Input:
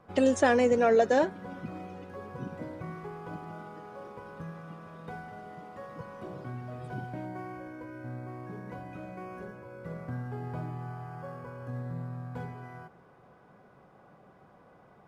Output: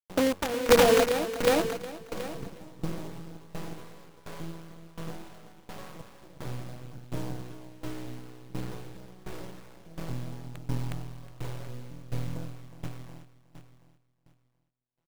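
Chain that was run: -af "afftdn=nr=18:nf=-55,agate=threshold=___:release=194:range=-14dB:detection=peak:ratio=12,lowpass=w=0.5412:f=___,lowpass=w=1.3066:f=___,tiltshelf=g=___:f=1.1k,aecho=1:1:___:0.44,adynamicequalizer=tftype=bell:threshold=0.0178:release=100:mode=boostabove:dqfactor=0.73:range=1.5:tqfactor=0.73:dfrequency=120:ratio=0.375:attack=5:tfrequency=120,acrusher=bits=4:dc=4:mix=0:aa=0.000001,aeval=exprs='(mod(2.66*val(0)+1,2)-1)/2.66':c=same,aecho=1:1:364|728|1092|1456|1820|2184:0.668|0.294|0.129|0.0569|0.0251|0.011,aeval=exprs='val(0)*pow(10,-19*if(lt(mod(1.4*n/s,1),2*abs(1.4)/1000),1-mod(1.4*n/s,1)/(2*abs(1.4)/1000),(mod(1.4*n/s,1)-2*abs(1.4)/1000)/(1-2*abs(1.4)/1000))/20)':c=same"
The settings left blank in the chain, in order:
-52dB, 1.4k, 1.4k, 7.5, 6.2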